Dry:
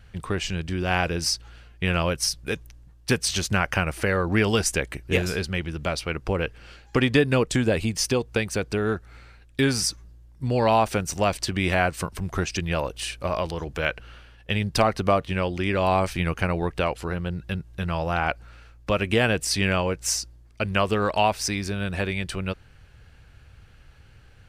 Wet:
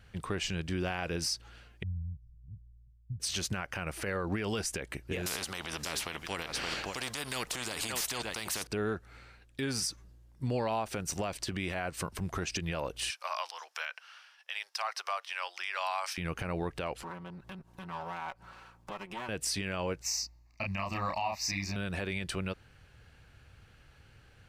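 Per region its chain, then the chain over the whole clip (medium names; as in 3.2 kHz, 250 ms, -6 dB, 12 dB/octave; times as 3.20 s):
1.83–3.20 s: inverse Chebyshev low-pass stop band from 510 Hz, stop band 70 dB + tape noise reduction on one side only decoder only
5.26–8.67 s: delay 571 ms -17.5 dB + spectrum-flattening compressor 4:1
13.10–16.18 s: inverse Chebyshev high-pass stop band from 190 Hz, stop band 70 dB + peaking EQ 5.4 kHz +10 dB 0.29 oct
17.02–19.29 s: comb filter that takes the minimum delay 5.3 ms + compression 3:1, threshold -43 dBFS + peaking EQ 950 Hz +13.5 dB 0.78 oct
20.02–21.76 s: bass shelf 470 Hz -4 dB + static phaser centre 2.2 kHz, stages 8 + doubling 31 ms -2 dB
whole clip: bass shelf 65 Hz -9.5 dB; compression, threshold -24 dBFS; peak limiter -19.5 dBFS; trim -3.5 dB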